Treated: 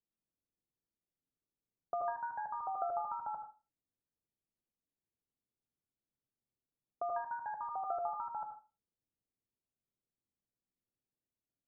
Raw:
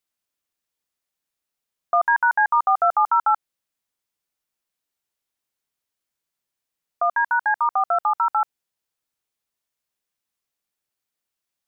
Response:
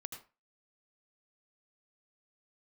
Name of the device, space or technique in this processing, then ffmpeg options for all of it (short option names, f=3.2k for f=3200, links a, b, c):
television next door: -filter_complex "[0:a]acompressor=threshold=-19dB:ratio=6,lowpass=360[a];[1:a]atrim=start_sample=2205[b];[a][b]afir=irnorm=-1:irlink=0,volume=4dB"